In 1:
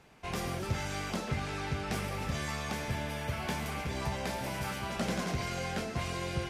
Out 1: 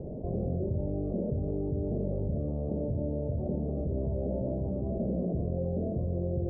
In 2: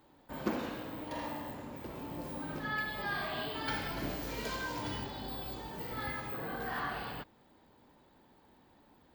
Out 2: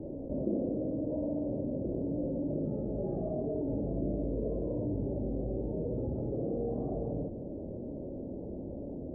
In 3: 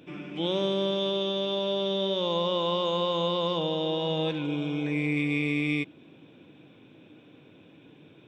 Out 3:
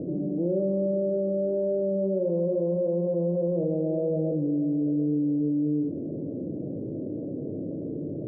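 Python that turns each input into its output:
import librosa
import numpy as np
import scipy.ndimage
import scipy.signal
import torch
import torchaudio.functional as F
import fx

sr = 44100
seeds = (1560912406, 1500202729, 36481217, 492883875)

y = scipy.signal.sosfilt(scipy.signal.cheby1(5, 1.0, 610.0, 'lowpass', fs=sr, output='sos'), x)
y = fx.room_early_taps(y, sr, ms=(47, 58), db=(-9.5, -6.5))
y = fx.env_flatten(y, sr, amount_pct=70)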